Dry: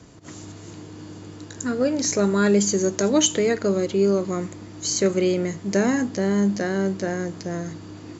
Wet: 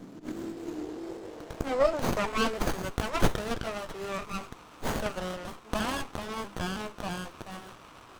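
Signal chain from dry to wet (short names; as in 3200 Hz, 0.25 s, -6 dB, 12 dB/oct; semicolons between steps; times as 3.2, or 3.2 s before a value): trilling pitch shifter +1.5 st, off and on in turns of 0.322 s; high-pass sweep 210 Hz -> 1200 Hz, 0.11–2.57; running maximum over 17 samples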